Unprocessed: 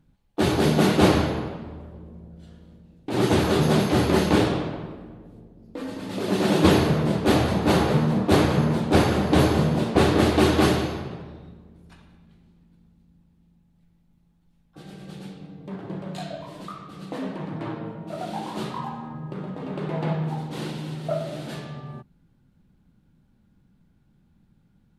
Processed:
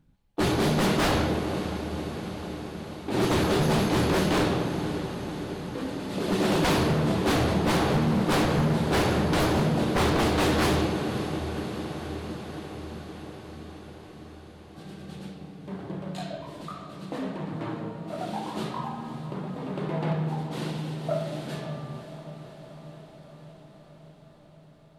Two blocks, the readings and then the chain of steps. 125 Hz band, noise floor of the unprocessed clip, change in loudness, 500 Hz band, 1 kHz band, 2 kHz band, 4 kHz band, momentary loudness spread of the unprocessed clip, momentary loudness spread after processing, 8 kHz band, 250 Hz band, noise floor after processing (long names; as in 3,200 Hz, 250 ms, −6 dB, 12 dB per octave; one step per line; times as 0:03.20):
−3.0 dB, −63 dBFS, −4.0 dB, −3.5 dB, −1.5 dB, −1.0 dB, −1.5 dB, 20 LU, 19 LU, −0.5 dB, −3.5 dB, −52 dBFS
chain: feedback delay with all-pass diffusion 552 ms, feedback 71%, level −12 dB
wave folding −16 dBFS
level −1.5 dB